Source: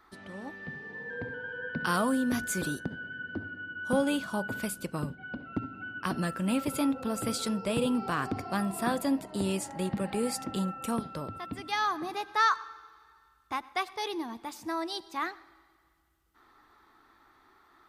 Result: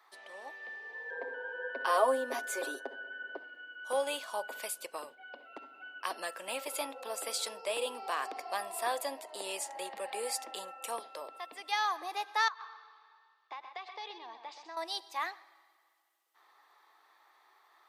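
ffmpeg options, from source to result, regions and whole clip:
-filter_complex "[0:a]asettb=1/sr,asplit=3[s0][s1][s2];[s0]atrim=end=1.114[s3];[s1]atrim=start=1.11:end=3.37,asetpts=PTS-STARTPTS,afade=t=in:d=0.004:c=qsin,afade=t=out:st=2.256:d=0.004:c=qsin,highpass=f=270:w=0.5412,highpass=f=270:w=1.3066,tiltshelf=f=1400:g=8,aecho=1:1:7.4:0.74,atrim=end_sample=99666[s4];[s2]atrim=start=3.366[s5];[s3][s4]acrossfade=d=0.004:c1=hsin:c2=qsin[s6];[s6][s5]acrossfade=d=0.004:c1=qsin:c2=hsin,asettb=1/sr,asplit=3[s7][s8][s9];[s7]atrim=end=12.484[s10];[s8]atrim=start=12.48:end=14.77,asetpts=PTS-STARTPTS,afade=t=in:d=0.004:c=qsin,afade=t=out:st=2.286:d=0.004:c=qsin,lowpass=f=4700:w=0.5412,lowpass=f=4700:w=1.3066,acompressor=threshold=0.0141:ratio=10:attack=3.2:release=140:knee=1:detection=peak,aecho=1:1:127:0.355,atrim=end_sample=100989[s11];[s9]atrim=start=14.766[s12];[s10][s11]acrossfade=d=0.004:c1=hsin:c2=qsin[s13];[s13][s12]acrossfade=d=0.004:c1=qsin:c2=hsin,highpass=f=530:w=0.5412,highpass=f=530:w=1.3066,equalizer=f=1400:t=o:w=0.26:g=-11"

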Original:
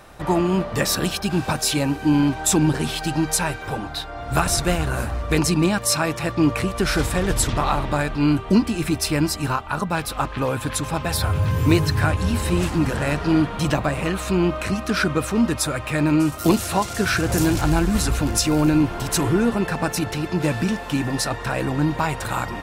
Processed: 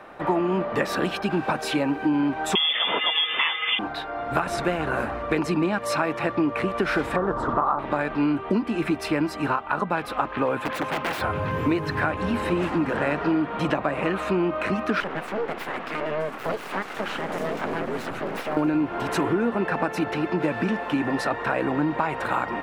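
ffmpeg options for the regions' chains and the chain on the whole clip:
-filter_complex "[0:a]asettb=1/sr,asplit=3[s0][s1][s2];[s0]atrim=end=2.554[s3];[s1]atrim=start=2.55:end=3.79,asetpts=PTS-STARTPTS,afade=t=in:d=0.004:c=qsin,afade=t=out:st=1.236:d=0.004:c=qsin,acontrast=90,lowpass=f=3100:t=q:w=0.5098,lowpass=f=3100:t=q:w=0.6013,lowpass=f=3100:t=q:w=0.9,lowpass=f=3100:t=q:w=2.563,afreqshift=-3600[s4];[s2]atrim=start=3.786[s5];[s3][s4]acrossfade=d=0.004:c1=hsin:c2=qsin[s6];[s6][s5]acrossfade=d=0.004:c1=qsin:c2=hsin,asettb=1/sr,asplit=3[s7][s8][s9];[s7]atrim=end=7.164[s10];[s8]atrim=start=7.16:end=7.79,asetpts=PTS-STARTPTS,afade=t=in:d=0.004:c=qsin,afade=t=out:st=0.626:d=0.004:c=qsin,lowpass=6300,highshelf=f=1700:t=q:w=3:g=-11[s11];[s9]atrim=start=7.786[s12];[s10][s11]acrossfade=d=0.004:c1=hsin:c2=qsin[s13];[s13][s12]acrossfade=d=0.004:c1=qsin:c2=hsin,asettb=1/sr,asplit=3[s14][s15][s16];[s14]atrim=end=10.574[s17];[s15]atrim=start=10.57:end=11.21,asetpts=PTS-STARTPTS,afade=t=in:d=0.004:c=qsin,afade=t=out:st=0.636:d=0.004:c=qsin,lowshelf=f=91:g=-9.5,aeval=exprs='(mod(9.44*val(0)+1,2)-1)/9.44':c=same[s18];[s16]atrim=start=11.206[s19];[s17][s18]acrossfade=d=0.004:c1=hsin:c2=qsin[s20];[s20][s19]acrossfade=d=0.004:c1=qsin:c2=hsin,asettb=1/sr,asplit=3[s21][s22][s23];[s21]atrim=end=15.004[s24];[s22]atrim=start=15:end=18.57,asetpts=PTS-STARTPTS,afade=t=in:d=0.004:c=qsin,afade=t=out:st=3.566:d=0.004:c=qsin,bandreject=f=50:t=h:w=6,bandreject=f=100:t=h:w=6,bandreject=f=150:t=h:w=6,acompressor=threshold=0.0562:ratio=2:attack=3.2:release=140:knee=1:detection=peak,aeval=exprs='abs(val(0))':c=same[s25];[s23]atrim=start=18.566[s26];[s24][s25]acrossfade=d=0.004:c1=hsin:c2=qsin[s27];[s27][s26]acrossfade=d=0.004:c1=qsin:c2=hsin,acrossover=split=200 2800:gain=0.126 1 0.1[s28][s29][s30];[s28][s29][s30]amix=inputs=3:normalize=0,acompressor=threshold=0.0708:ratio=6,volume=1.5"

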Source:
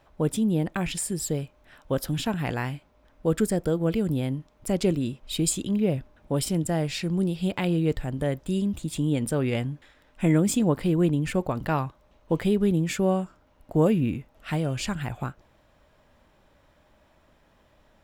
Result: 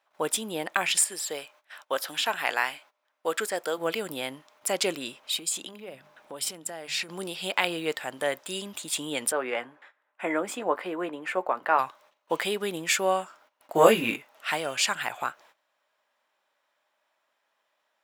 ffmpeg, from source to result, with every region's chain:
-filter_complex "[0:a]asettb=1/sr,asplit=3[s0][s1][s2];[s0]atrim=end=1.044[s3];[s1]atrim=start=1.04:end=3.78,asetpts=PTS-STARTPTS,afade=t=in:d=0.004:c=qsin,afade=t=out:st=2.736:d=0.004:c=qsin,acrossover=split=3900[s4][s5];[s5]acompressor=threshold=0.01:ratio=4:attack=1:release=60[s6];[s4][s6]amix=inputs=2:normalize=0,highpass=f=380:p=1[s7];[s2]atrim=start=3.776[s8];[s3][s7]acrossfade=d=0.004:c1=hsin:c2=qsin[s9];[s9][s8]acrossfade=d=0.004:c1=qsin:c2=hsin,asettb=1/sr,asplit=3[s10][s11][s12];[s10]atrim=end=5.184[s13];[s11]atrim=start=5.18:end=7.09,asetpts=PTS-STARTPTS,afade=t=in:d=0.004:c=qsin,afade=t=out:st=1.906:d=0.004:c=qsin,lowshelf=f=370:g=5.5,bandreject=f=50:t=h:w=6,bandreject=f=100:t=h:w=6,bandreject=f=150:t=h:w=6,bandreject=f=200:t=h:w=6,acompressor=threshold=0.0282:ratio=8:attack=3.2:release=140:knee=1:detection=peak[s14];[s12]atrim=start=7.086[s15];[s13][s14]acrossfade=d=0.004:c1=hsin:c2=qsin[s16];[s16][s15]acrossfade=d=0.004:c1=qsin:c2=hsin,asettb=1/sr,asplit=3[s17][s18][s19];[s17]atrim=end=9.324[s20];[s18]atrim=start=9.32:end=11.79,asetpts=PTS-STARTPTS,afade=t=in:d=0.004:c=qsin,afade=t=out:st=2.466:d=0.004:c=qsin,acrossover=split=230 2100:gain=0.2 1 0.126[s21][s22][s23];[s21][s22][s23]amix=inputs=3:normalize=0,asplit=2[s24][s25];[s25]adelay=16,volume=0.251[s26];[s24][s26]amix=inputs=2:normalize=0,atrim=end_sample=108927[s27];[s19]atrim=start=11.786[s28];[s20][s27]acrossfade=d=0.004:c1=hsin:c2=qsin[s29];[s29][s28]acrossfade=d=0.004:c1=qsin:c2=hsin,asettb=1/sr,asplit=3[s30][s31][s32];[s30]atrim=end=13.754[s33];[s31]atrim=start=13.75:end=14.16,asetpts=PTS-STARTPTS,afade=t=in:d=0.004:c=qsin,afade=t=out:st=0.406:d=0.004:c=qsin,acontrast=23,asplit=2[s34][s35];[s35]adelay=18,volume=0.794[s36];[s34][s36]amix=inputs=2:normalize=0,atrim=end_sample=18081[s37];[s32]atrim=start=14.156[s38];[s33][s37]acrossfade=d=0.004:c1=hsin:c2=qsin[s39];[s39][s38]acrossfade=d=0.004:c1=qsin:c2=hsin,agate=range=0.141:threshold=0.00178:ratio=16:detection=peak,highpass=840,volume=2.66"

